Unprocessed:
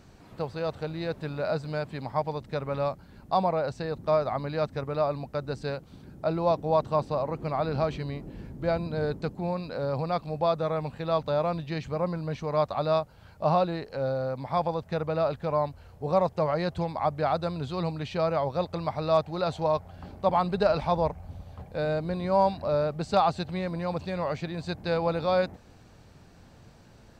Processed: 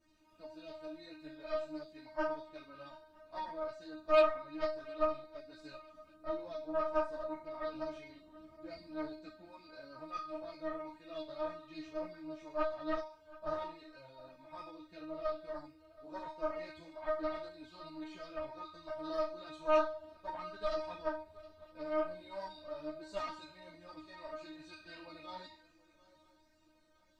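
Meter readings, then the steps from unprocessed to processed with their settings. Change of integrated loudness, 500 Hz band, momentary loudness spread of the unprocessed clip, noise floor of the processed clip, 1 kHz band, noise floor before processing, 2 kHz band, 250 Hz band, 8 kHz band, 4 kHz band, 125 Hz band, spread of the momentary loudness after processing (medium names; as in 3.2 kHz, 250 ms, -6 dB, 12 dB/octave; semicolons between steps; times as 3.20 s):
-11.0 dB, -11.0 dB, 8 LU, -67 dBFS, -13.0 dB, -53 dBFS, -8.5 dB, -12.5 dB, no reading, -11.5 dB, -30.5 dB, 17 LU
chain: band-stop 820 Hz, Q 12; feedback comb 310 Hz, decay 0.54 s, harmonics all, mix 100%; Chebyshev shaper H 6 -14 dB, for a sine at -20 dBFS; shuffle delay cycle 963 ms, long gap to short 3:1, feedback 31%, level -21 dB; three-phase chorus; trim +6 dB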